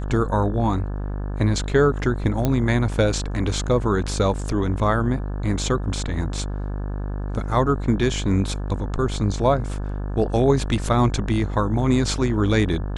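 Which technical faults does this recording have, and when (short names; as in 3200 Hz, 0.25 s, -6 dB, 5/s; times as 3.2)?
buzz 50 Hz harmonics 35 -27 dBFS
2.45 pop -8 dBFS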